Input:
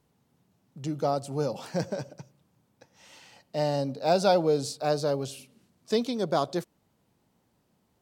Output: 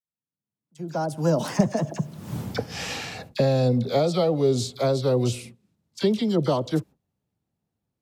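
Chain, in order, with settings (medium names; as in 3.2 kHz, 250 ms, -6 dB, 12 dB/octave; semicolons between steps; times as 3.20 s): Doppler pass-by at 2.34 s, 38 m/s, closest 3.5 m; recorder AGC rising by 18 dB/s; gate -51 dBFS, range -16 dB; peaking EQ 100 Hz +7 dB 2.8 oct; phase dispersion lows, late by 42 ms, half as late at 1.3 kHz; trim +5.5 dB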